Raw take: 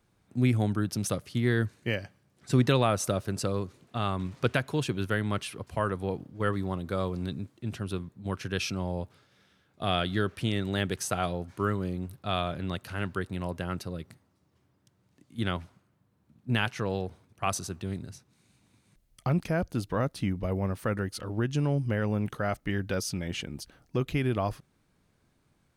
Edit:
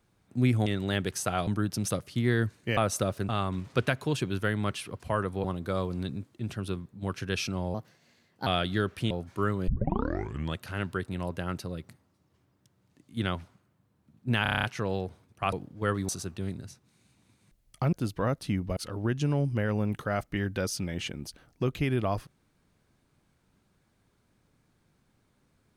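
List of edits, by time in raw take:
1.96–2.85 s: delete
3.37–3.96 s: delete
6.11–6.67 s: move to 17.53 s
8.97–9.87 s: speed 124%
10.51–11.32 s: move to 0.66 s
11.89 s: tape start 0.91 s
16.64 s: stutter 0.03 s, 8 plays
19.37–19.66 s: delete
20.50–21.10 s: delete

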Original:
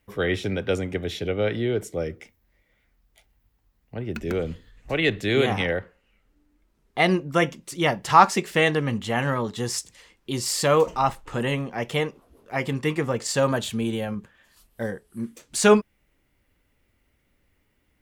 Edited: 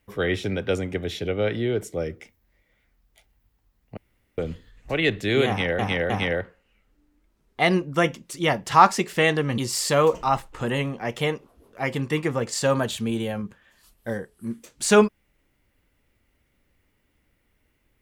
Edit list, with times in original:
3.97–4.38 s: room tone
5.48–5.79 s: loop, 3 plays
8.96–10.31 s: delete

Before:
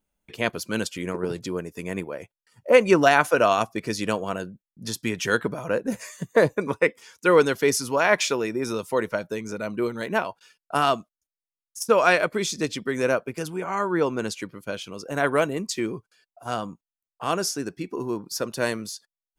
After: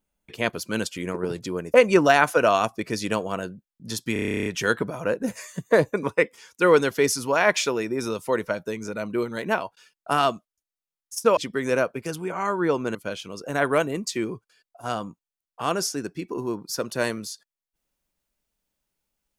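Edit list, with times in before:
1.74–2.71 s: delete
5.10 s: stutter 0.03 s, 12 plays
12.01–12.69 s: delete
14.27–14.57 s: delete

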